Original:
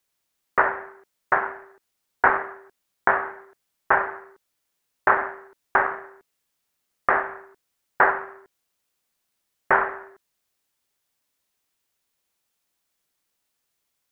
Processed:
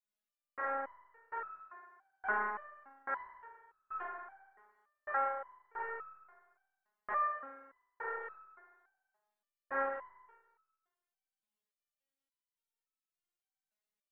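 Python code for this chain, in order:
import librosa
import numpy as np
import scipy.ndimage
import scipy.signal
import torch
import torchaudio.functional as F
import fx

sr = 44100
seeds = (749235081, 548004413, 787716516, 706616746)

y = fx.rev_spring(x, sr, rt60_s=1.2, pass_ms=(33, 44), chirp_ms=35, drr_db=-3.5)
y = fx.resonator_held(y, sr, hz=3.5, low_hz=210.0, high_hz=1300.0)
y = y * 10.0 ** (-7.0 / 20.0)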